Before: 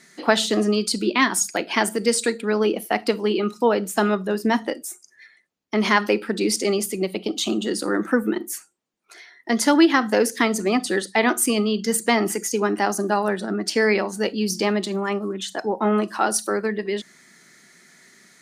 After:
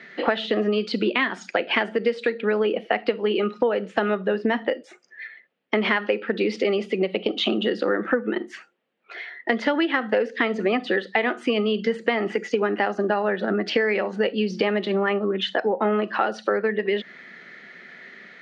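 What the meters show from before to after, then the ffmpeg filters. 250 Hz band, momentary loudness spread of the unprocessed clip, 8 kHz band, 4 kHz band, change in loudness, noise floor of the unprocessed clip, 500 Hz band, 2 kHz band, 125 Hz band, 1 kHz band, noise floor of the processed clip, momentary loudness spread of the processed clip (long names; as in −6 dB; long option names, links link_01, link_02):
−4.0 dB, 7 LU, below −25 dB, −2.5 dB, −2.0 dB, −57 dBFS, 0.0 dB, −0.5 dB, can't be measured, −3.0 dB, −57 dBFS, 15 LU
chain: -af "highpass=210,equalizer=frequency=310:width_type=q:width=4:gain=-5,equalizer=frequency=510:width_type=q:width=4:gain=6,equalizer=frequency=1000:width_type=q:width=4:gain=-5,equalizer=frequency=1800:width_type=q:width=4:gain=3,equalizer=frequency=2900:width_type=q:width=4:gain=3,lowpass=frequency=3200:width=0.5412,lowpass=frequency=3200:width=1.3066,acompressor=threshold=-28dB:ratio=6,volume=8.5dB"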